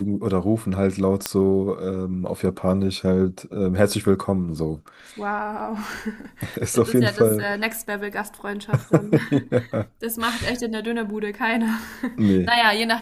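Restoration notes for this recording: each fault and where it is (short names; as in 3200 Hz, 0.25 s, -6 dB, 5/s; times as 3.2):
1.26 pop -5 dBFS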